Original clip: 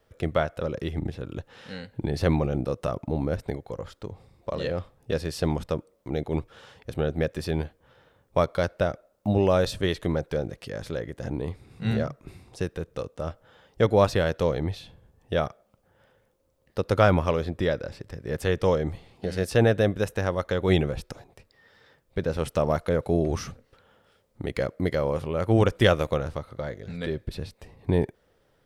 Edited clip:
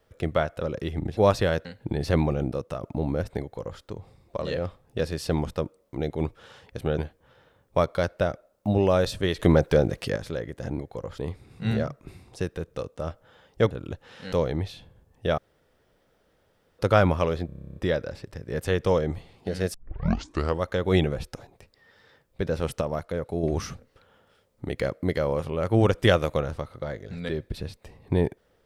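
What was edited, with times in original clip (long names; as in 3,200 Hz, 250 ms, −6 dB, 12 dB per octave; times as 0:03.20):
0:01.17–0:01.78: swap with 0:13.91–0:14.39
0:02.56–0:02.95: fade out, to −6.5 dB
0:03.54–0:03.94: duplicate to 0:11.39
0:07.11–0:07.58: remove
0:09.99–0:10.76: clip gain +8 dB
0:15.45–0:16.86: fill with room tone
0:17.53: stutter 0.03 s, 11 plays
0:19.51: tape start 0.88 s
0:22.58–0:23.20: clip gain −5.5 dB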